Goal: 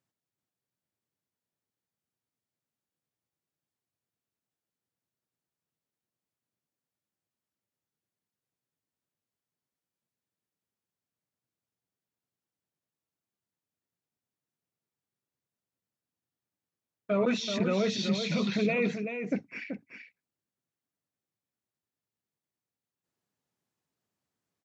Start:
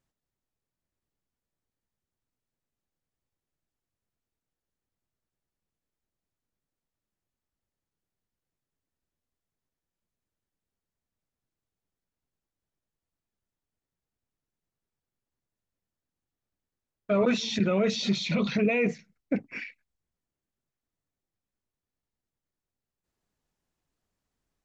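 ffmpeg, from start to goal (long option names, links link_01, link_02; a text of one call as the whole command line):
ffmpeg -i in.wav -filter_complex "[0:a]highpass=frequency=100:width=0.5412,highpass=frequency=100:width=1.3066,asplit=2[link_01][link_02];[link_02]aecho=0:1:382:0.422[link_03];[link_01][link_03]amix=inputs=2:normalize=0,volume=-3dB" out.wav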